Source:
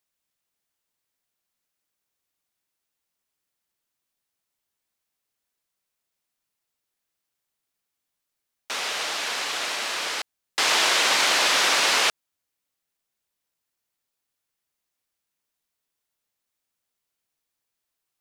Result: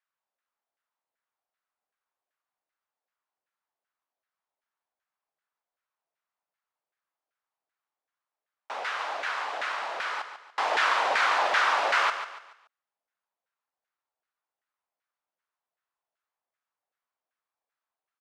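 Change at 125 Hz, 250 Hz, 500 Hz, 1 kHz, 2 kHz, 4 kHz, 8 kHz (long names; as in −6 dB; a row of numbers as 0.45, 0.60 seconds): can't be measured, −11.0 dB, −1.5 dB, +1.5 dB, −3.0 dB, −12.5 dB, −19.0 dB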